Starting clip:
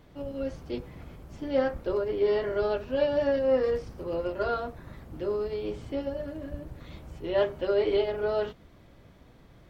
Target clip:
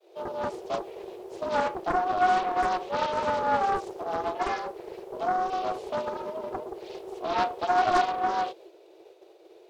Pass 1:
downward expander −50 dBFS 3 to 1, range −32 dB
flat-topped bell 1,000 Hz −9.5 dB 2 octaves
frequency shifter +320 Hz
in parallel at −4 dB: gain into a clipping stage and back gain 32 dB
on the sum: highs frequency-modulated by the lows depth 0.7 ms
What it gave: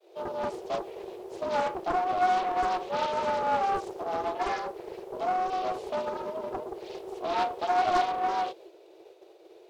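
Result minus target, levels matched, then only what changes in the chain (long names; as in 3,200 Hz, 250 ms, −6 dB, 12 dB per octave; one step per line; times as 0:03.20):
gain into a clipping stage and back: distortion +17 dB
change: gain into a clipping stage and back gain 21.5 dB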